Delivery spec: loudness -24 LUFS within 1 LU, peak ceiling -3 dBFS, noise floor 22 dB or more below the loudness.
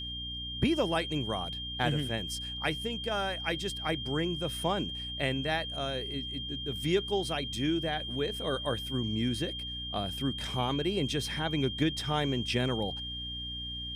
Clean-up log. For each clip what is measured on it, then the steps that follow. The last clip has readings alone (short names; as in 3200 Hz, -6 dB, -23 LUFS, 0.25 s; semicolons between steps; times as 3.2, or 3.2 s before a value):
hum 60 Hz; harmonics up to 300 Hz; hum level -41 dBFS; steady tone 3200 Hz; tone level -37 dBFS; loudness -32.0 LUFS; peak -15.5 dBFS; loudness target -24.0 LUFS
-> notches 60/120/180/240/300 Hz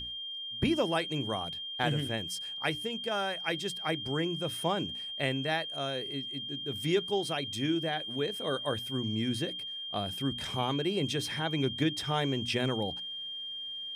hum none; steady tone 3200 Hz; tone level -37 dBFS
-> notch 3200 Hz, Q 30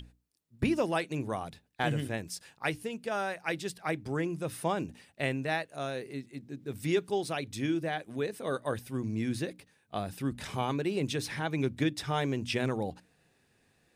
steady tone none; loudness -33.5 LUFS; peak -15.5 dBFS; loudness target -24.0 LUFS
-> gain +9.5 dB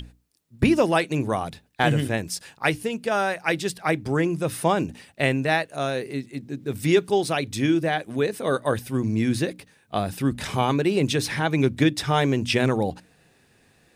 loudness -24.0 LUFS; peak -6.0 dBFS; noise floor -61 dBFS